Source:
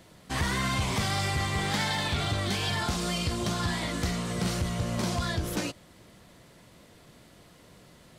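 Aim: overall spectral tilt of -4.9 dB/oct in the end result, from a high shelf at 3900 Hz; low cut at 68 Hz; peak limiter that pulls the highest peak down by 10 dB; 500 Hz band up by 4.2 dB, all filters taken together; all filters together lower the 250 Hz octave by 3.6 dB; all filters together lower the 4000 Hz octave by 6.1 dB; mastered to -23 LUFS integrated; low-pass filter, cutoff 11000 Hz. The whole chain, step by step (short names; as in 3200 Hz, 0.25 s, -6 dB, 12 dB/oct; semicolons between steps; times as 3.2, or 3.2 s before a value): HPF 68 Hz; LPF 11000 Hz; bell 250 Hz -8 dB; bell 500 Hz +8 dB; high shelf 3900 Hz -5.5 dB; bell 4000 Hz -4.5 dB; gain +12 dB; limiter -14.5 dBFS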